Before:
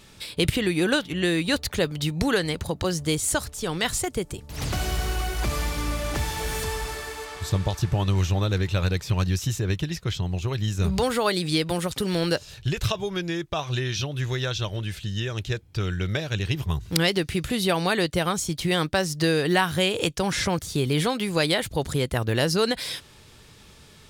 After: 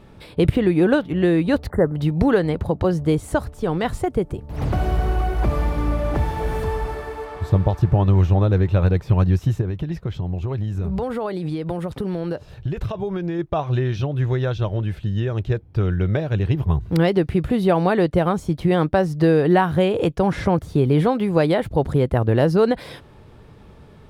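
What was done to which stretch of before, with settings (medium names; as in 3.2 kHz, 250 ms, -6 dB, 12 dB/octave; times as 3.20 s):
1.70–1.96 s: spectral selection erased 2.1–7.2 kHz
9.61–13.39 s: compression, threshold -27 dBFS
whole clip: FFT filter 760 Hz 0 dB, 6.9 kHz -24 dB, 11 kHz -20 dB; trim +7 dB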